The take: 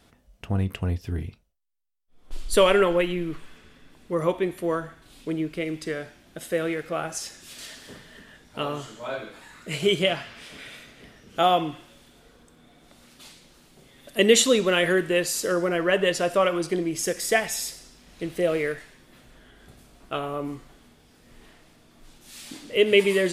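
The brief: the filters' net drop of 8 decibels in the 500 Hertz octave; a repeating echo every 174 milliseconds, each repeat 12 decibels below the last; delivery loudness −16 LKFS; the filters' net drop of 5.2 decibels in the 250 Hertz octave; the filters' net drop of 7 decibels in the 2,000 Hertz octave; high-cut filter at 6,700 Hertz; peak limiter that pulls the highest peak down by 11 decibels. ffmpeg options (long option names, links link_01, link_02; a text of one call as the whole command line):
ffmpeg -i in.wav -af "lowpass=6700,equalizer=frequency=250:width_type=o:gain=-4,equalizer=frequency=500:width_type=o:gain=-8.5,equalizer=frequency=2000:width_type=o:gain=-8.5,alimiter=limit=-21dB:level=0:latency=1,aecho=1:1:174|348|522:0.251|0.0628|0.0157,volume=17.5dB" out.wav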